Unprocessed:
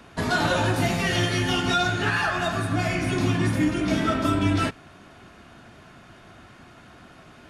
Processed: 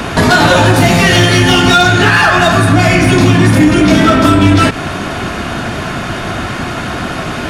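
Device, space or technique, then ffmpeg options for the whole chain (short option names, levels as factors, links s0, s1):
loud club master: -af "acompressor=threshold=0.0447:ratio=2,asoftclip=type=hard:threshold=0.0794,alimiter=level_in=33.5:limit=0.891:release=50:level=0:latency=1,volume=0.891"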